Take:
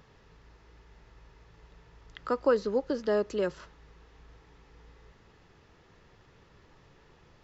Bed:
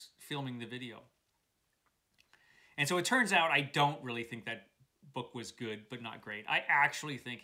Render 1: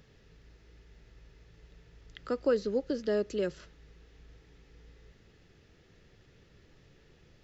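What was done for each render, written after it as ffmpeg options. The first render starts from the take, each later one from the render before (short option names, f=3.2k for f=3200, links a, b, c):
-af "equalizer=f=990:t=o:w=0.89:g=-13.5"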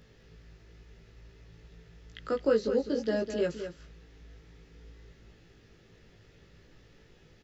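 -filter_complex "[0:a]asplit=2[a][b];[b]adelay=18,volume=-2dB[c];[a][c]amix=inputs=2:normalize=0,aecho=1:1:206:0.355"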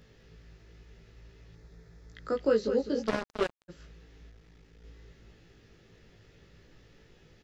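-filter_complex "[0:a]asettb=1/sr,asplit=3[a][b][c];[a]atrim=end=1.554[d];[b]atrim=start=1.55:end=2.36,asetpts=PTS-STARTPTS,afade=t=in:d=0.004:c=qsin,afade=t=out:st=0.806:d=0.004:c=qsin,equalizer=f=2.9k:t=o:w=0.47:g=-13.5[e];[c]atrim=start=2.356[f];[d][e]acrossfade=d=0.004:c1=hsin:c2=qsin[g];[g][f]acrossfade=d=0.004:c1=qsin:c2=hsin,asplit=3[h][i][j];[h]afade=t=out:st=3.06:d=0.02[k];[i]acrusher=bits=3:mix=0:aa=0.5,afade=t=in:st=3.06:d=0.02,afade=t=out:st=3.68:d=0.02[l];[j]afade=t=in:st=3.68:d=0.02[m];[k][l][m]amix=inputs=3:normalize=0,asplit=3[n][o][p];[n]afade=t=out:st=4.29:d=0.02[q];[o]aeval=exprs='(tanh(316*val(0)+0.55)-tanh(0.55))/316':c=same,afade=t=in:st=4.29:d=0.02,afade=t=out:st=4.83:d=0.02[r];[p]afade=t=in:st=4.83:d=0.02[s];[q][r][s]amix=inputs=3:normalize=0"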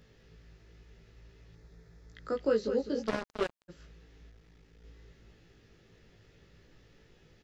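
-af "volume=-2.5dB"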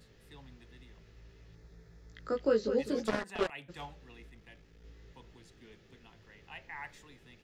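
-filter_complex "[1:a]volume=-16.5dB[a];[0:a][a]amix=inputs=2:normalize=0"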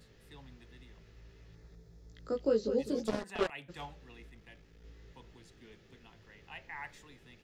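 -filter_complex "[0:a]asettb=1/sr,asplit=3[a][b][c];[a]atrim=end=1.754[d];[b]atrim=start=1.75:end=3.24,asetpts=PTS-STARTPTS,afade=t=in:d=0.004:c=qsin,afade=t=out:st=1.486:d=0.004:c=qsin,equalizer=f=1.7k:w=0.9:g=-9.5[e];[c]atrim=start=3.236[f];[d][e]acrossfade=d=0.004:c1=hsin:c2=qsin[g];[g][f]acrossfade=d=0.004:c1=qsin:c2=hsin"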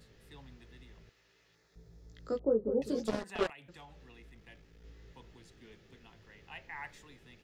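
-filter_complex "[0:a]asettb=1/sr,asplit=3[a][b][c];[a]atrim=end=1.094[d];[b]atrim=start=1.09:end=1.76,asetpts=PTS-STARTPTS,afade=t=in:d=0.004:c=qsin,afade=t=out:st=0.666:d=0.004:c=qsin,highpass=f=1.1k:p=1[e];[c]atrim=start=1.756[f];[d][e]acrossfade=d=0.004:c1=hsin:c2=qsin[g];[g][f]acrossfade=d=0.004:c1=qsin:c2=hsin,asettb=1/sr,asplit=3[h][i][j];[h]atrim=end=2.394[k];[i]atrim=start=2.39:end=2.82,asetpts=PTS-STARTPTS,afade=t=in:d=0.004:c=qsin,afade=t=out:st=0.426:d=0.004:c=qsin,lowpass=f=1k:w=0.5412,lowpass=f=1k:w=1.3066[l];[j]atrim=start=2.816[m];[k][l]acrossfade=d=0.004:c1=hsin:c2=qsin[n];[n][m]acrossfade=d=0.004:c1=qsin:c2=hsin,asettb=1/sr,asplit=3[o][p][q];[o]atrim=end=3.524[r];[p]atrim=start=3.52:end=4.46,asetpts=PTS-STARTPTS,afade=t=in:d=0.004:c=qsin,afade=t=out:st=0.936:d=0.004:c=qsin,acompressor=threshold=-51dB:ratio=3:attack=3.2:release=140:knee=1:detection=peak[s];[q]atrim=start=4.456[t];[r][s]acrossfade=d=0.004:c1=hsin:c2=qsin[u];[u][t]acrossfade=d=0.004:c1=qsin:c2=hsin"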